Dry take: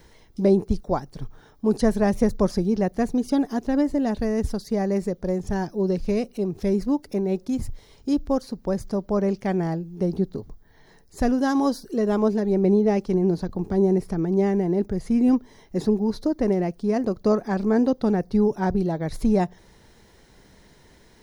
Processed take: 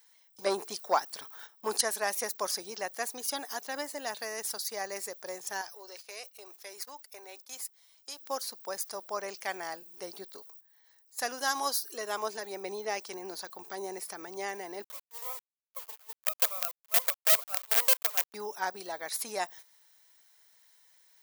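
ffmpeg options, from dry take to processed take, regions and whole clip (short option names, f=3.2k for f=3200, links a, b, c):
-filter_complex "[0:a]asettb=1/sr,asplit=3[a][b][c];[a]atrim=end=0.464[d];[b]atrim=start=0.46:end=1.81,asetpts=PTS-STARTPTS,afade=t=in:d=0.004:c=qsin,afade=t=out:st=1.346:d=0.004:c=qsin,highshelf=f=4.6k:g=-4.5,acontrast=75[e];[c]atrim=start=1.806[f];[d][e]acrossfade=d=0.004:c1=hsin:c2=qsin[g];[g][f]acrossfade=d=0.004:c1=qsin:c2=hsin,asettb=1/sr,asplit=3[h][i][j];[h]atrim=end=5.614[k];[i]atrim=start=5.61:end=8.21,asetpts=PTS-STARTPTS,afade=t=in:d=0.004:c=qsin,afade=t=out:st=2.596:d=0.004:c=qsin,highpass=480,acompressor=threshold=-32dB:ratio=4:attack=3.2:release=140:knee=1:detection=peak[l];[j]atrim=start=8.206[m];[k][l]acrossfade=d=0.004:c1=hsin:c2=qsin[n];[n][m]acrossfade=d=0.004:c1=qsin:c2=hsin,asettb=1/sr,asplit=3[o][p][q];[o]atrim=end=14.844[r];[p]atrim=start=14.84:end=18.34,asetpts=PTS-STARTPTS,afade=t=in:d=0.004:c=qsin,afade=t=out:st=3.496:d=0.004:c=qsin,asuperpass=centerf=590:order=20:qfactor=1.9,acrusher=bits=5:dc=4:mix=0:aa=0.000001[s];[q]atrim=start=18.336[t];[r][s]acrossfade=d=0.004:c1=hsin:c2=qsin[u];[u][t]acrossfade=d=0.004:c1=qsin:c2=hsin,agate=range=-13dB:threshold=-41dB:ratio=16:detection=peak,highpass=980,aemphasis=mode=production:type=bsi"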